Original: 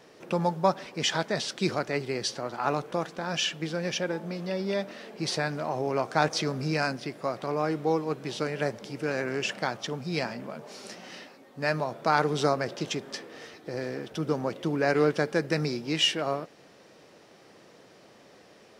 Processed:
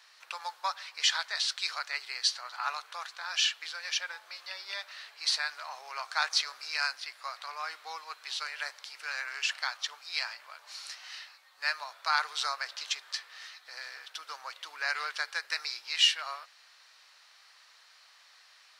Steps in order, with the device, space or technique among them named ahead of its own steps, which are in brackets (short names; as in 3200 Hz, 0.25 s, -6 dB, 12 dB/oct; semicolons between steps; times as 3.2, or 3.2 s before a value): headphones lying on a table (HPF 1100 Hz 24 dB/oct; bell 4200 Hz +8 dB 0.3 oct)